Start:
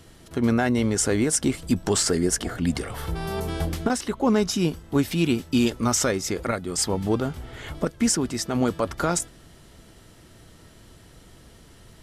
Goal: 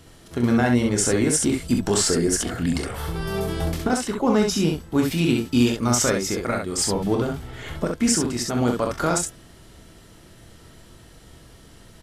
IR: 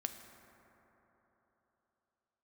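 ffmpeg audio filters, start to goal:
-af "aecho=1:1:25|40|66:0.398|0.299|0.631"

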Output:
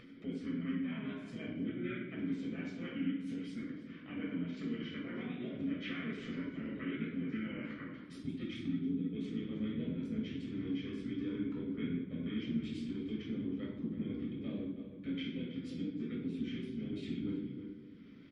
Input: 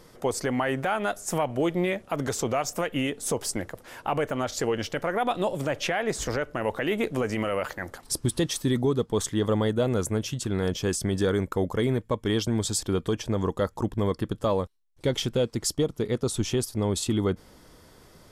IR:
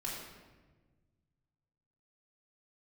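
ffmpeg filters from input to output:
-filter_complex "[0:a]asplit=3[link_01][link_02][link_03];[link_01]bandpass=frequency=270:width_type=q:width=8,volume=0dB[link_04];[link_02]bandpass=frequency=2290:width_type=q:width=8,volume=-6dB[link_05];[link_03]bandpass=frequency=3010:width_type=q:width=8,volume=-9dB[link_06];[link_04][link_05][link_06]amix=inputs=3:normalize=0,asplit=2[link_07][link_08];[link_08]adelay=320.7,volume=-12dB,highshelf=frequency=4000:gain=-7.22[link_09];[link_07][link_09]amix=inputs=2:normalize=0,acompressor=threshold=-39dB:ratio=4,asplit=3[link_10][link_11][link_12];[link_11]asetrate=29433,aresample=44100,atempo=1.49831,volume=-5dB[link_13];[link_12]asetrate=33038,aresample=44100,atempo=1.33484,volume=-8dB[link_14];[link_10][link_13][link_14]amix=inputs=3:normalize=0[link_15];[1:a]atrim=start_sample=2205,asetrate=74970,aresample=44100[link_16];[link_15][link_16]afir=irnorm=-1:irlink=0,acompressor=mode=upward:threshold=-49dB:ratio=2.5,equalizer=frequency=7500:width_type=o:width=1.2:gain=-11,volume=4dB" -ar 48000 -c:a libmp3lame -b:a 48k

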